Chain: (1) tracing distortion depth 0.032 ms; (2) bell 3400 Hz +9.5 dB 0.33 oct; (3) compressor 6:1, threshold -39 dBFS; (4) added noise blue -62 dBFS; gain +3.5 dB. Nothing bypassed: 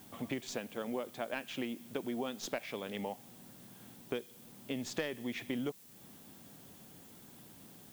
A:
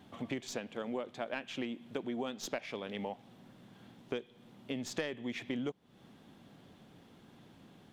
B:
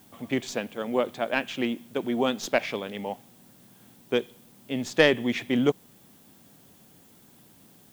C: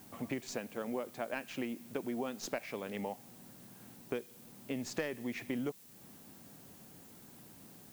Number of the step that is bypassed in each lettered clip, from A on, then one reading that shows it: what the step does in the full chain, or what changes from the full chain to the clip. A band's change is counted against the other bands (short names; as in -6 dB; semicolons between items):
4, momentary loudness spread change +5 LU; 3, mean gain reduction 9.0 dB; 2, 4 kHz band -4.5 dB